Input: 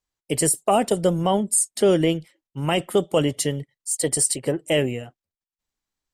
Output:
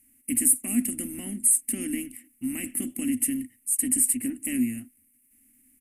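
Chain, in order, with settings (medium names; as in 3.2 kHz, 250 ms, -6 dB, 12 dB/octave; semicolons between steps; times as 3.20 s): spectral levelling over time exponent 0.6; tempo 1.1×; FFT filter 110 Hz 0 dB, 160 Hz -26 dB, 260 Hz +12 dB, 440 Hz -28 dB, 1.1 kHz -28 dB, 2.3 kHz -1 dB, 4 kHz -22 dB, 7.4 kHz -8 dB, 11 kHz +14 dB; speed mistake 25 fps video run at 24 fps; trim -6.5 dB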